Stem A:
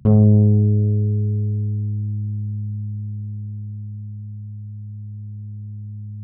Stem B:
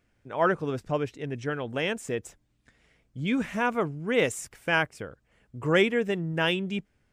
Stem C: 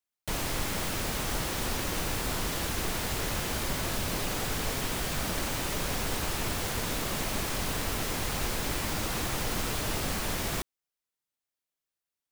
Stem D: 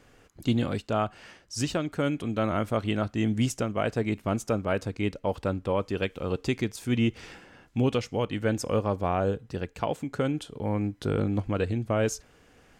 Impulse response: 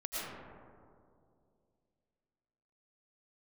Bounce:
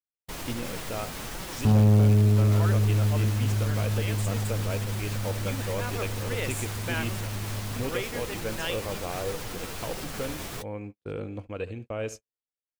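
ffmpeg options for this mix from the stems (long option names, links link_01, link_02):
-filter_complex "[0:a]adelay=1600,volume=-2dB[link_01];[1:a]aemphasis=mode=production:type=bsi,adelay=2200,volume=-0.5dB[link_02];[2:a]alimiter=limit=-22.5dB:level=0:latency=1,flanger=delay=5.2:depth=7.2:regen=41:speed=1.4:shape=sinusoidal,volume=0dB[link_03];[3:a]equalizer=frequency=200:width_type=o:width=0.33:gain=-4,equalizer=frequency=500:width_type=o:width=0.33:gain=6,equalizer=frequency=2500:width_type=o:width=0.33:gain=8,volume=-9dB,asplit=3[link_04][link_05][link_06];[link_05]volume=-16.5dB[link_07];[link_06]apad=whole_len=411236[link_08];[link_02][link_08]sidechaincompress=threshold=-39dB:ratio=8:attack=16:release=561[link_09];[link_07]aecho=0:1:73|146|219|292|365|438:1|0.41|0.168|0.0689|0.0283|0.0116[link_10];[link_01][link_09][link_03][link_04][link_10]amix=inputs=5:normalize=0,agate=range=-46dB:threshold=-39dB:ratio=16:detection=peak,asoftclip=type=tanh:threshold=-13.5dB"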